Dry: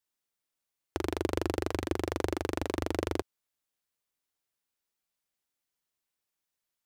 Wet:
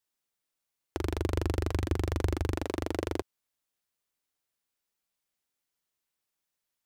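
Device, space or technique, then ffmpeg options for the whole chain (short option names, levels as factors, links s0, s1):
parallel distortion: -filter_complex "[0:a]asplit=3[s0][s1][s2];[s0]afade=t=out:st=0.98:d=0.02[s3];[s1]asubboost=boost=5:cutoff=200,afade=t=in:st=0.98:d=0.02,afade=t=out:st=2.56:d=0.02[s4];[s2]afade=t=in:st=2.56:d=0.02[s5];[s3][s4][s5]amix=inputs=3:normalize=0,asplit=2[s6][s7];[s7]asoftclip=type=hard:threshold=0.0398,volume=0.473[s8];[s6][s8]amix=inputs=2:normalize=0,volume=0.75"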